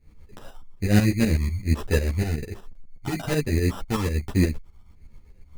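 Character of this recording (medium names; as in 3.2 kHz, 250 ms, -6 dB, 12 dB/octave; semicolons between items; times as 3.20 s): phasing stages 4, 1.2 Hz, lowest notch 510–2000 Hz; aliases and images of a low sample rate 2.2 kHz, jitter 0%; tremolo saw up 8.1 Hz, depth 75%; a shimmering, thickened sound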